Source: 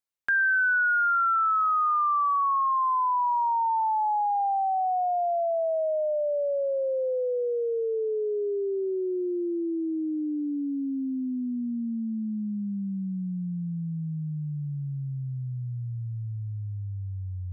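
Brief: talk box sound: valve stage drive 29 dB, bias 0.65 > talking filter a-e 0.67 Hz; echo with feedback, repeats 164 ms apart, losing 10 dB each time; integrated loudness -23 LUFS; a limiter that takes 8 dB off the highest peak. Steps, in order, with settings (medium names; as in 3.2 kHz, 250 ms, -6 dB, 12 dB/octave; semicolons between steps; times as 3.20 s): peak limiter -27.5 dBFS; feedback delay 164 ms, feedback 32%, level -10 dB; valve stage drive 29 dB, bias 0.65; talking filter a-e 0.67 Hz; trim +21 dB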